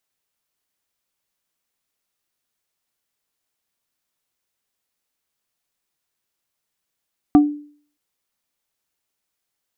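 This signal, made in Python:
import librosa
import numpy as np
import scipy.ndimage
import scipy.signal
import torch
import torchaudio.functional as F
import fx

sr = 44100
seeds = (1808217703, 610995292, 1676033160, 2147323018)

y = fx.strike_wood(sr, length_s=0.62, level_db=-5, body='plate', hz=294.0, decay_s=0.49, tilt_db=9, modes=3)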